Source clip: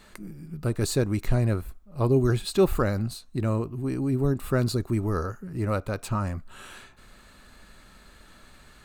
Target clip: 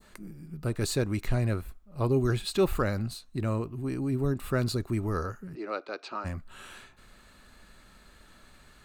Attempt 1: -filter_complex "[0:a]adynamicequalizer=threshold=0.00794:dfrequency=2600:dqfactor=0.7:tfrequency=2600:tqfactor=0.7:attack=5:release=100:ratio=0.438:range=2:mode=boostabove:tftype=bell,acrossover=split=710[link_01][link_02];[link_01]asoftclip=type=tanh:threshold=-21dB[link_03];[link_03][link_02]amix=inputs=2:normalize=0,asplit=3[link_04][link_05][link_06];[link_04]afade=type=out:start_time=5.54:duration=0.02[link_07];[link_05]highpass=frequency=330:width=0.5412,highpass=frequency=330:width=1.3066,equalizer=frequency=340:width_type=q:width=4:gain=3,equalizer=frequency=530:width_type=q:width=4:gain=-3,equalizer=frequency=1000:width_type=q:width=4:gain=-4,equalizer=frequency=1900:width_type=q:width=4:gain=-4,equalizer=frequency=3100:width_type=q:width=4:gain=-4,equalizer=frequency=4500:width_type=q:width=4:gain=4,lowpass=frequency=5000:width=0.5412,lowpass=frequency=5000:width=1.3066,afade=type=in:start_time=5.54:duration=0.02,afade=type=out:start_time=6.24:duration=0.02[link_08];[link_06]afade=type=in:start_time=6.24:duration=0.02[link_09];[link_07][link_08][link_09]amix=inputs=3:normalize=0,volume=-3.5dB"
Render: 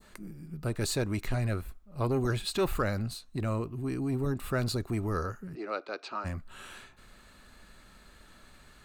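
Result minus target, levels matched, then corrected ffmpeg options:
soft clipping: distortion +15 dB
-filter_complex "[0:a]adynamicequalizer=threshold=0.00794:dfrequency=2600:dqfactor=0.7:tfrequency=2600:tqfactor=0.7:attack=5:release=100:ratio=0.438:range=2:mode=boostabove:tftype=bell,acrossover=split=710[link_01][link_02];[link_01]asoftclip=type=tanh:threshold=-10dB[link_03];[link_03][link_02]amix=inputs=2:normalize=0,asplit=3[link_04][link_05][link_06];[link_04]afade=type=out:start_time=5.54:duration=0.02[link_07];[link_05]highpass=frequency=330:width=0.5412,highpass=frequency=330:width=1.3066,equalizer=frequency=340:width_type=q:width=4:gain=3,equalizer=frequency=530:width_type=q:width=4:gain=-3,equalizer=frequency=1000:width_type=q:width=4:gain=-4,equalizer=frequency=1900:width_type=q:width=4:gain=-4,equalizer=frequency=3100:width_type=q:width=4:gain=-4,equalizer=frequency=4500:width_type=q:width=4:gain=4,lowpass=frequency=5000:width=0.5412,lowpass=frequency=5000:width=1.3066,afade=type=in:start_time=5.54:duration=0.02,afade=type=out:start_time=6.24:duration=0.02[link_08];[link_06]afade=type=in:start_time=6.24:duration=0.02[link_09];[link_07][link_08][link_09]amix=inputs=3:normalize=0,volume=-3.5dB"

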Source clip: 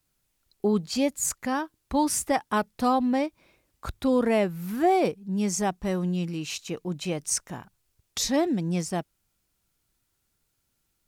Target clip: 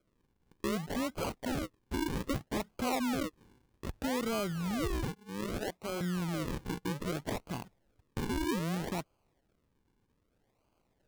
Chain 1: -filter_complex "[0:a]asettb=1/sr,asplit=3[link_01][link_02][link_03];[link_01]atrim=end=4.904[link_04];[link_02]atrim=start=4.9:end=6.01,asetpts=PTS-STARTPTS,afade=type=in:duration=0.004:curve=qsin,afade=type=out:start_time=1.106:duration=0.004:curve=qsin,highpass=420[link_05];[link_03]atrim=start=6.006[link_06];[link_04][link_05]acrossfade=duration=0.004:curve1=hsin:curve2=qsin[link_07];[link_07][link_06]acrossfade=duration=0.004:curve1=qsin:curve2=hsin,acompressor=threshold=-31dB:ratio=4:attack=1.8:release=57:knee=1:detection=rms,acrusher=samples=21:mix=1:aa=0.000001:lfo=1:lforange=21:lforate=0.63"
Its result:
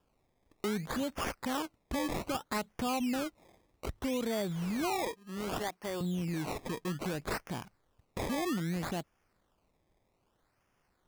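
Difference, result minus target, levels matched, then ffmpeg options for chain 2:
sample-and-hold swept by an LFO: distortion −7 dB
-filter_complex "[0:a]asettb=1/sr,asplit=3[link_01][link_02][link_03];[link_01]atrim=end=4.904[link_04];[link_02]atrim=start=4.9:end=6.01,asetpts=PTS-STARTPTS,afade=type=in:duration=0.004:curve=qsin,afade=type=out:start_time=1.106:duration=0.004:curve=qsin,highpass=420[link_05];[link_03]atrim=start=6.006[link_06];[link_04][link_05]acrossfade=duration=0.004:curve1=hsin:curve2=qsin[link_07];[link_07][link_06]acrossfade=duration=0.004:curve1=qsin:curve2=hsin,acompressor=threshold=-31dB:ratio=4:attack=1.8:release=57:knee=1:detection=rms,acrusher=samples=47:mix=1:aa=0.000001:lfo=1:lforange=47:lforate=0.63"

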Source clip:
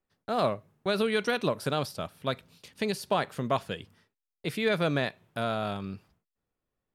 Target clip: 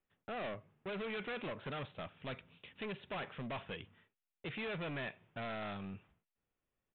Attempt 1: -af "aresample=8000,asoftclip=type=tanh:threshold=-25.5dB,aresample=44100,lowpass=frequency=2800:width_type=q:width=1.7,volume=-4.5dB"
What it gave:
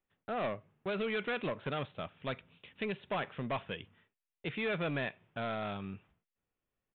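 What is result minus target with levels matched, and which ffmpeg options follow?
soft clipping: distortion −6 dB
-af "aresample=8000,asoftclip=type=tanh:threshold=-35dB,aresample=44100,lowpass=frequency=2800:width_type=q:width=1.7,volume=-4.5dB"

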